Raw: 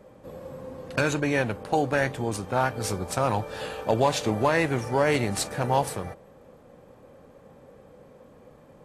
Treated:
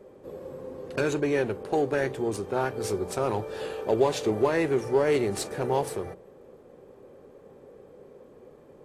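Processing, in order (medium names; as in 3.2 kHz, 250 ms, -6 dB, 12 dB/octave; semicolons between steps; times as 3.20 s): peaking EQ 390 Hz +14 dB 0.48 oct; hum notches 60/120/180 Hz; in parallel at -7.5 dB: saturation -24 dBFS, distortion -5 dB; on the sum: trim -7 dB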